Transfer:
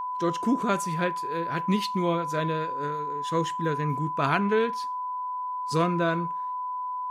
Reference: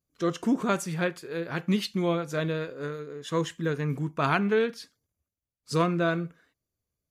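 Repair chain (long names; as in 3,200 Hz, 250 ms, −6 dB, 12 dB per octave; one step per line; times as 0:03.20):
notch filter 1,000 Hz, Q 30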